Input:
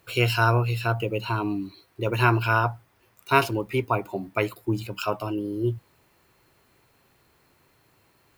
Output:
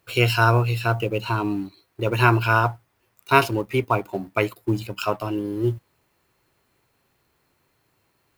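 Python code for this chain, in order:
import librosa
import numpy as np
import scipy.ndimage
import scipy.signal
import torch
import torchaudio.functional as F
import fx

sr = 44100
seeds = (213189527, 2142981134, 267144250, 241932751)

y = fx.law_mismatch(x, sr, coded='A')
y = F.gain(torch.from_numpy(y), 3.5).numpy()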